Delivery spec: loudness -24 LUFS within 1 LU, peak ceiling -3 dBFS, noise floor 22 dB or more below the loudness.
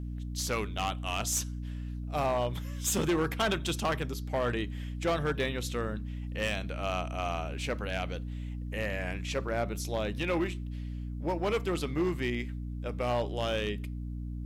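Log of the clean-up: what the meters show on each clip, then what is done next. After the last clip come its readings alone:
clipped 1.6%; flat tops at -23.5 dBFS; hum 60 Hz; harmonics up to 300 Hz; hum level -35 dBFS; loudness -33.0 LUFS; peak -23.5 dBFS; loudness target -24.0 LUFS
-> clip repair -23.5 dBFS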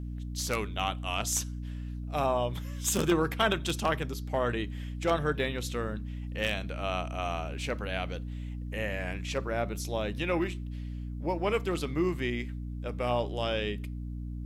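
clipped 0.0%; hum 60 Hz; harmonics up to 300 Hz; hum level -35 dBFS
-> de-hum 60 Hz, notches 5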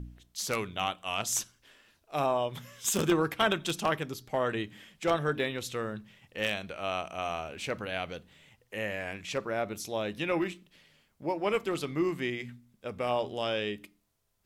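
hum none; loudness -32.0 LUFS; peak -13.5 dBFS; loudness target -24.0 LUFS
-> gain +8 dB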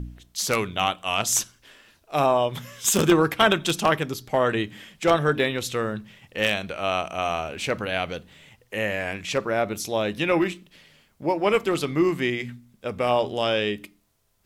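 loudness -24.0 LUFS; peak -5.5 dBFS; noise floor -64 dBFS

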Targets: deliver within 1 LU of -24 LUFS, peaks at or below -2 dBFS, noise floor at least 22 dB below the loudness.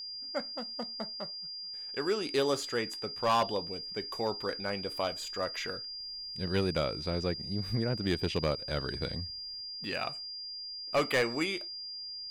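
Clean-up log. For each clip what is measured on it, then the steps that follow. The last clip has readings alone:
clipped 0.5%; flat tops at -21.5 dBFS; steady tone 4800 Hz; tone level -39 dBFS; loudness -33.5 LUFS; peak -21.5 dBFS; loudness target -24.0 LUFS
-> clip repair -21.5 dBFS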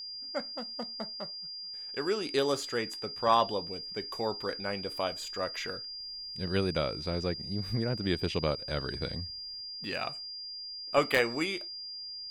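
clipped 0.0%; steady tone 4800 Hz; tone level -39 dBFS
-> notch 4800 Hz, Q 30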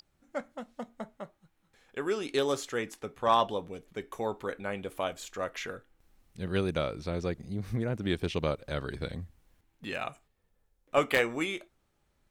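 steady tone none; loudness -33.0 LUFS; peak -12.0 dBFS; loudness target -24.0 LUFS
-> gain +9 dB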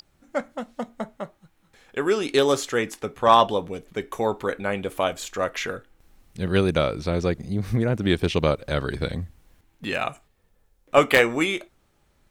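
loudness -24.0 LUFS; peak -3.0 dBFS; noise floor -65 dBFS

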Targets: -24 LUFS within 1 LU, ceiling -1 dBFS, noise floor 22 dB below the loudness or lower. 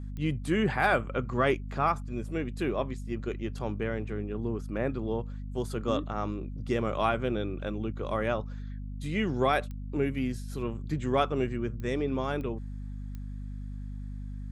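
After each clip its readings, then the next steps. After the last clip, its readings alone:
clicks 6; hum 50 Hz; harmonics up to 250 Hz; hum level -35 dBFS; loudness -31.5 LUFS; peak -12.0 dBFS; loudness target -24.0 LUFS
-> de-click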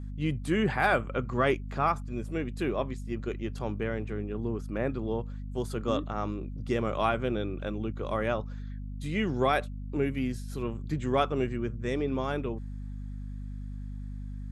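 clicks 0; hum 50 Hz; harmonics up to 250 Hz; hum level -35 dBFS
-> de-hum 50 Hz, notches 5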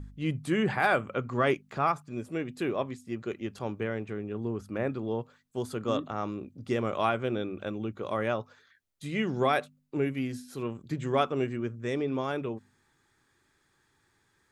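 hum none; loudness -31.5 LUFS; peak -12.0 dBFS; loudness target -24.0 LUFS
-> gain +7.5 dB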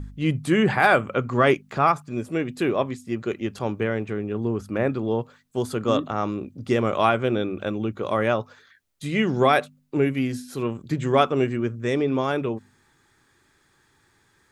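loudness -24.0 LUFS; peak -4.5 dBFS; noise floor -64 dBFS

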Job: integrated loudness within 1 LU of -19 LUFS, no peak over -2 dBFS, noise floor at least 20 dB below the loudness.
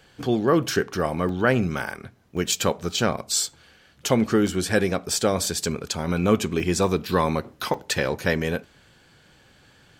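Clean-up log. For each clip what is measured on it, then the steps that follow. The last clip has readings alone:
dropouts 7; longest dropout 2.4 ms; loudness -24.0 LUFS; peak -6.0 dBFS; loudness target -19.0 LUFS
-> interpolate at 0.2/1.29/2.37/3.47/4.47/6.6/7.74, 2.4 ms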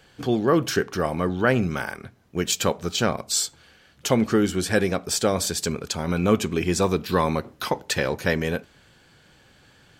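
dropouts 0; loudness -24.0 LUFS; peak -5.5 dBFS; loudness target -19.0 LUFS
-> gain +5 dB; limiter -2 dBFS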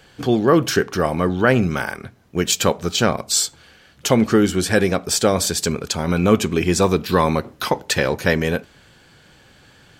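loudness -19.0 LUFS; peak -2.0 dBFS; noise floor -51 dBFS

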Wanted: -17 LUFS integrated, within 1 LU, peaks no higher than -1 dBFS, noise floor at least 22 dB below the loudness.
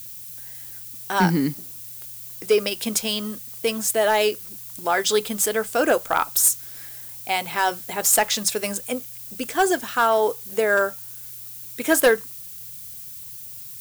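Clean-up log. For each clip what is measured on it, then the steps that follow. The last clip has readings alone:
clipped 0.4%; flat tops at -10.0 dBFS; noise floor -38 dBFS; noise floor target -44 dBFS; loudness -21.5 LUFS; peak -10.0 dBFS; loudness target -17.0 LUFS
-> clip repair -10 dBFS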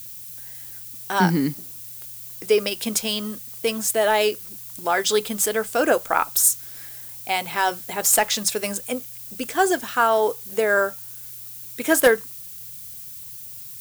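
clipped 0.0%; noise floor -38 dBFS; noise floor target -44 dBFS
-> denoiser 6 dB, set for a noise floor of -38 dBFS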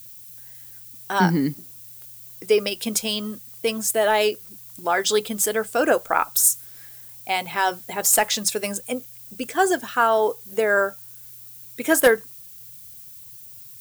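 noise floor -43 dBFS; noise floor target -44 dBFS
-> denoiser 6 dB, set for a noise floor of -43 dBFS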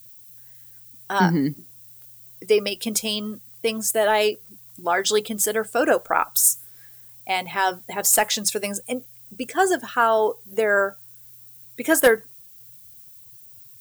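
noise floor -47 dBFS; loudness -21.5 LUFS; peak -3.5 dBFS; loudness target -17.0 LUFS
-> gain +4.5 dB; limiter -1 dBFS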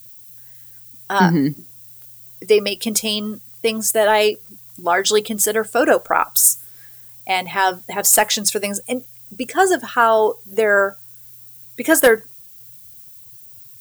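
loudness -17.5 LUFS; peak -1.0 dBFS; noise floor -42 dBFS

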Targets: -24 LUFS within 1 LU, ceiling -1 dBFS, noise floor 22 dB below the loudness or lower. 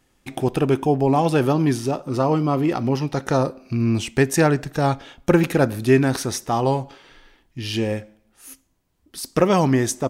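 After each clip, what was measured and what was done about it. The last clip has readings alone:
loudness -21.0 LUFS; peak -4.0 dBFS; loudness target -24.0 LUFS
-> gain -3 dB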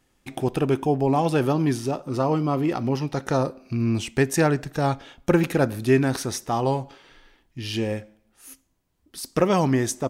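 loudness -24.0 LUFS; peak -7.0 dBFS; noise floor -67 dBFS

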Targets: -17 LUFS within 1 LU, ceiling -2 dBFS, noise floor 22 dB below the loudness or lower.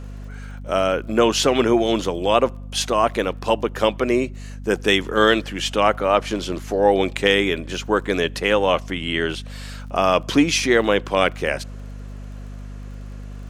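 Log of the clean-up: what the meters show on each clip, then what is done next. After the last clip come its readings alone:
ticks 29/s; hum 50 Hz; harmonics up to 250 Hz; hum level -31 dBFS; loudness -20.0 LUFS; peak -2.0 dBFS; loudness target -17.0 LUFS
-> de-click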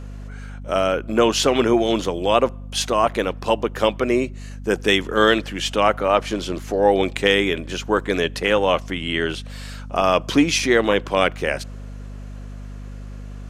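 ticks 0.074/s; hum 50 Hz; harmonics up to 250 Hz; hum level -32 dBFS
-> de-hum 50 Hz, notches 5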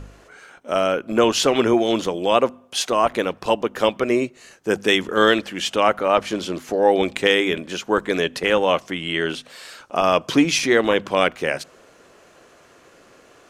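hum none; loudness -20.0 LUFS; peak -2.0 dBFS; loudness target -17.0 LUFS
-> gain +3 dB; limiter -2 dBFS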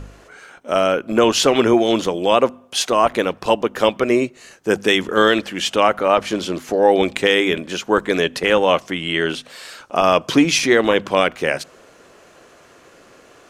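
loudness -17.5 LUFS; peak -2.0 dBFS; noise floor -49 dBFS

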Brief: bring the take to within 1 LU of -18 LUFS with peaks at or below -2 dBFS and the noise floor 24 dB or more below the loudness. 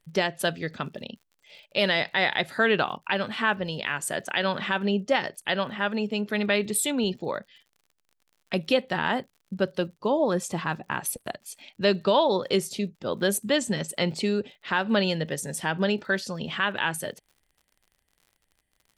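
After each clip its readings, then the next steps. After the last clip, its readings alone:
ticks 58/s; loudness -26.5 LUFS; peak -9.5 dBFS; loudness target -18.0 LUFS
-> de-click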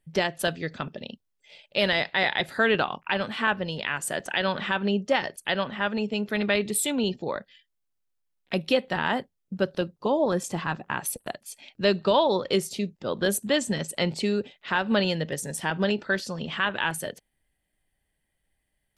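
ticks 0.16/s; loudness -26.5 LUFS; peak -9.5 dBFS; loudness target -18.0 LUFS
-> gain +8.5 dB; limiter -2 dBFS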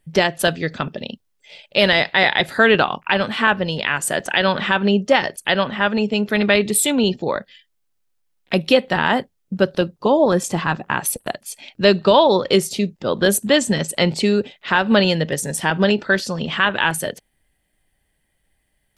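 loudness -18.5 LUFS; peak -2.0 dBFS; noise floor -69 dBFS

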